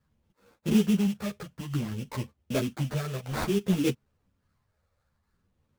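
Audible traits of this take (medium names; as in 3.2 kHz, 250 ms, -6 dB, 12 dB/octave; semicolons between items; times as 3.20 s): phasing stages 12, 0.56 Hz, lowest notch 280–2300 Hz; aliases and images of a low sample rate 3 kHz, jitter 20%; a shimmering, thickened sound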